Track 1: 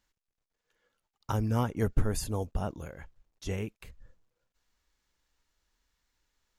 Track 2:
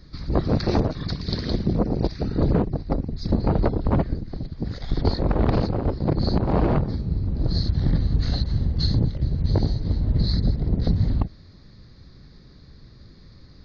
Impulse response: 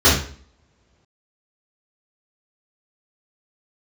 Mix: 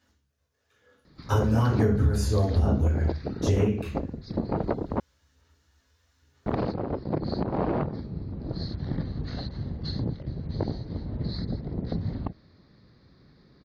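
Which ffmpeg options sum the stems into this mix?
-filter_complex "[0:a]highpass=81,aphaser=in_gain=1:out_gain=1:delay=2:decay=0.43:speed=1.1:type=sinusoidal,volume=1.06,asplit=2[s0][s1];[s1]volume=0.158[s2];[1:a]highpass=f=220:p=1,aemphasis=mode=reproduction:type=75kf,adelay=1050,volume=0.75,asplit=3[s3][s4][s5];[s3]atrim=end=5,asetpts=PTS-STARTPTS,afade=t=out:st=4.996:d=0.004:c=hsin[s6];[s4]atrim=start=5:end=6.46,asetpts=PTS-STARTPTS,volume=0[s7];[s5]atrim=start=6.46,asetpts=PTS-STARTPTS,afade=t=in:d=0.004:c=hsin[s8];[s6][s7][s8]concat=n=3:v=0:a=1[s9];[2:a]atrim=start_sample=2205[s10];[s2][s10]afir=irnorm=-1:irlink=0[s11];[s0][s9][s11]amix=inputs=3:normalize=0,acompressor=threshold=0.112:ratio=6"

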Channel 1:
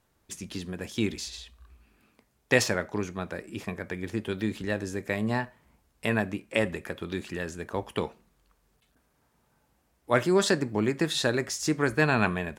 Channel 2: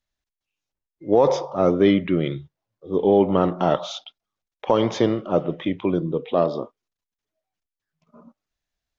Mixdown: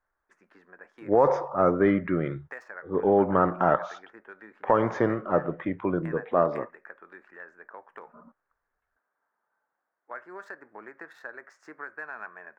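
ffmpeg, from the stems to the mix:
-filter_complex "[0:a]adynamicsmooth=sensitivity=3:basefreq=3000,highpass=610,acompressor=threshold=0.0224:ratio=3,volume=0.376[s0];[1:a]equalizer=f=250:w=0.4:g=-5,volume=0.891[s1];[s0][s1]amix=inputs=2:normalize=0,highshelf=f=2300:t=q:w=3:g=-13"

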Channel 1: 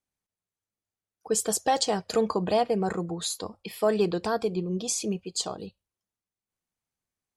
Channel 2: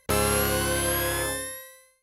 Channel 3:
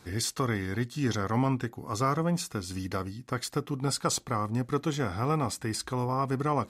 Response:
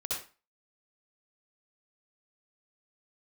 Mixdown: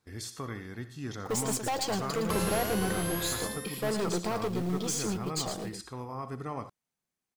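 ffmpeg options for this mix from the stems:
-filter_complex "[0:a]lowshelf=f=120:t=q:w=1.5:g=-7,aeval=exprs='(tanh(28.2*val(0)+0.25)-tanh(0.25))/28.2':c=same,acrusher=bits=4:mode=log:mix=0:aa=0.000001,volume=1.06,asplit=2[s0][s1];[s1]volume=0.398[s2];[1:a]adelay=2200,volume=0.335[s3];[2:a]agate=range=0.251:threshold=0.00708:ratio=16:detection=peak,volume=0.282,asplit=2[s4][s5];[s5]volume=0.266[s6];[3:a]atrim=start_sample=2205[s7];[s6][s7]afir=irnorm=-1:irlink=0[s8];[s2]aecho=0:1:113:1[s9];[s0][s3][s4][s8][s9]amix=inputs=5:normalize=0"

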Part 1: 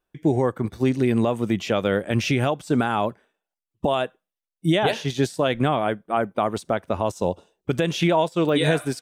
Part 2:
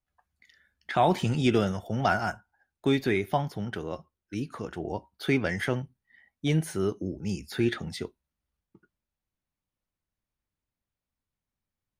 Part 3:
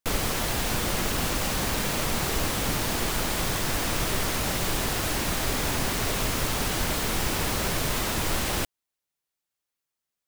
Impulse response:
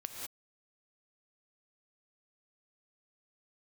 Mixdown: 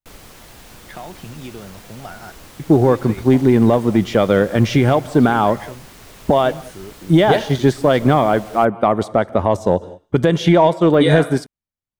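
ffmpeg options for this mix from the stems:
-filter_complex "[0:a]highshelf=f=3200:g=-10,bandreject=f=2600:w=6.2,acontrast=75,adelay=2450,volume=1.12,asplit=2[s0][s1];[s1]volume=0.188[s2];[1:a]acompressor=threshold=0.0562:ratio=6,volume=0.531[s3];[2:a]volume=0.188[s4];[3:a]atrim=start_sample=2205[s5];[s2][s5]afir=irnorm=-1:irlink=0[s6];[s0][s3][s4][s6]amix=inputs=4:normalize=0"

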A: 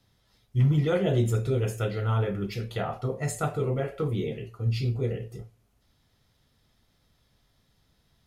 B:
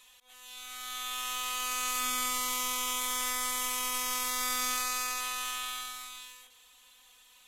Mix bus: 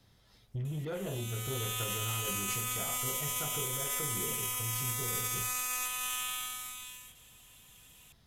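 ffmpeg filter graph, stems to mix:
-filter_complex "[0:a]acompressor=threshold=0.0141:ratio=4,asoftclip=type=tanh:threshold=0.02,volume=1.33[s0];[1:a]alimiter=limit=0.0668:level=0:latency=1,aexciter=amount=1.4:drive=3.1:freq=2400,adelay=650,volume=0.708[s1];[s0][s1]amix=inputs=2:normalize=0,alimiter=limit=0.0631:level=0:latency=1:release=87"

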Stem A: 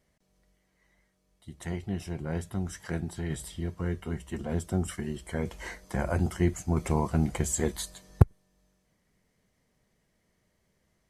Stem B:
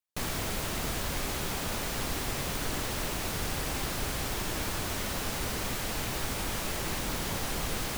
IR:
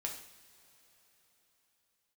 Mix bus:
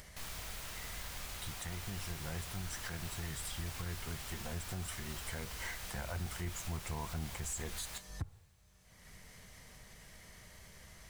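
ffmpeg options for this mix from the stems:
-filter_complex "[0:a]acompressor=mode=upward:threshold=0.0398:ratio=2.5,volume=0.631,asplit=2[s0][s1];[s1]volume=0.0944[s2];[1:a]volume=0.211,asplit=2[s3][s4];[s4]volume=0.596[s5];[2:a]atrim=start_sample=2205[s6];[s2][s5]amix=inputs=2:normalize=0[s7];[s7][s6]afir=irnorm=-1:irlink=0[s8];[s0][s3][s8]amix=inputs=3:normalize=0,equalizer=f=300:w=0.56:g=-12,asoftclip=type=tanh:threshold=0.0841,alimiter=level_in=2.24:limit=0.0631:level=0:latency=1:release=128,volume=0.447"

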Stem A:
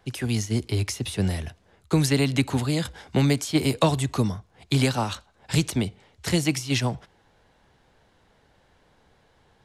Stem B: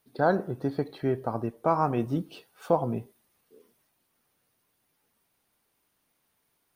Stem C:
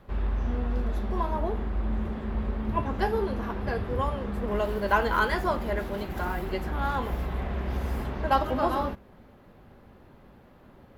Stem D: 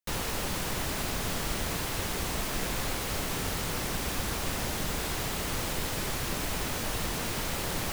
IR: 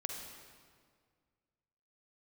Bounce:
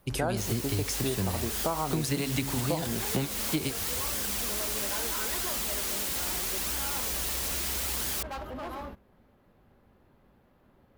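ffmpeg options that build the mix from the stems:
-filter_complex "[0:a]bandreject=f=69.06:t=h:w=4,bandreject=f=138.12:t=h:w=4,bandreject=f=207.18:t=h:w=4,bandreject=f=276.24:t=h:w=4,bandreject=f=345.3:t=h:w=4,bandreject=f=414.36:t=h:w=4,bandreject=f=483.42:t=h:w=4,bandreject=f=552.48:t=h:w=4,bandreject=f=621.54:t=h:w=4,bandreject=f=690.6:t=h:w=4,bandreject=f=759.66:t=h:w=4,bandreject=f=828.72:t=h:w=4,bandreject=f=897.78:t=h:w=4,bandreject=f=966.84:t=h:w=4,bandreject=f=1035.9:t=h:w=4,bandreject=f=1104.96:t=h:w=4,bandreject=f=1174.02:t=h:w=4,bandreject=f=1243.08:t=h:w=4,bandreject=f=1312.14:t=h:w=4,bandreject=f=1381.2:t=h:w=4,bandreject=f=1450.26:t=h:w=4,bandreject=f=1519.32:t=h:w=4,bandreject=f=1588.38:t=h:w=4,bandreject=f=1657.44:t=h:w=4,bandreject=f=1726.5:t=h:w=4,bandreject=f=1795.56:t=h:w=4,bandreject=f=1864.62:t=h:w=4,bandreject=f=1933.68:t=h:w=4,volume=1.06[s0];[1:a]volume=1.19,asplit=2[s1][s2];[2:a]volume=17.8,asoftclip=hard,volume=0.0562,volume=0.335[s3];[3:a]highpass=f=250:w=0.5412,highpass=f=250:w=1.3066,highshelf=f=2200:g=9.5,flanger=delay=0.6:depth=3.1:regen=66:speed=0.77:shape=sinusoidal,adelay=300,volume=0.794[s4];[s2]apad=whole_len=425545[s5];[s0][s5]sidechaingate=range=0.0224:threshold=0.001:ratio=16:detection=peak[s6];[s6][s1][s3][s4]amix=inputs=4:normalize=0,highshelf=f=8400:g=5.5,acompressor=threshold=0.0501:ratio=6"

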